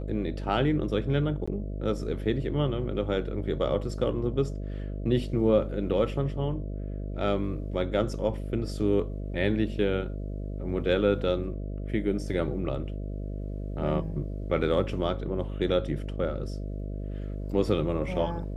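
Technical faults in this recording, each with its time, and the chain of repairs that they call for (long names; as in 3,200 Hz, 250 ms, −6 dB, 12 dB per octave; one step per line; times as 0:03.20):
mains buzz 50 Hz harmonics 13 −34 dBFS
0:01.46–0:01.48: drop-out 15 ms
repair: hum removal 50 Hz, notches 13
repair the gap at 0:01.46, 15 ms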